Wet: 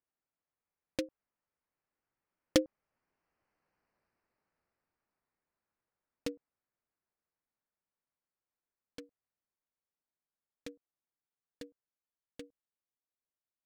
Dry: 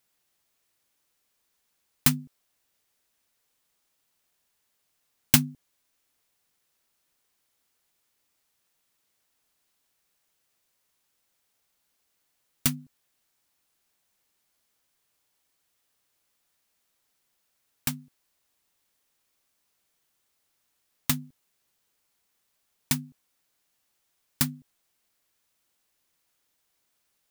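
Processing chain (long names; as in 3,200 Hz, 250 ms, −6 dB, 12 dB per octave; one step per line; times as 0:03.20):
adaptive Wiener filter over 25 samples
source passing by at 0:07.56, 15 m/s, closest 21 metres
low-pass filter 2,200 Hz 12 dB per octave
wrong playback speed 7.5 ips tape played at 15 ips
level +5 dB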